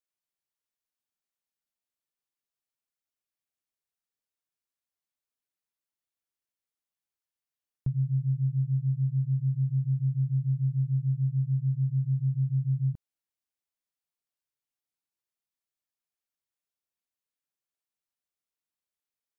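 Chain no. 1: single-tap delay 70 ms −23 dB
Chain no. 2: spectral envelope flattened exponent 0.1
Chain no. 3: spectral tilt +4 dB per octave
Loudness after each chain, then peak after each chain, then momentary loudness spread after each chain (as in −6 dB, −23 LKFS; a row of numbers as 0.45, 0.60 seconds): −28.5, −27.0, −40.0 LKFS; −21.0, −2.0, −32.5 dBFS; 2, 2, 2 LU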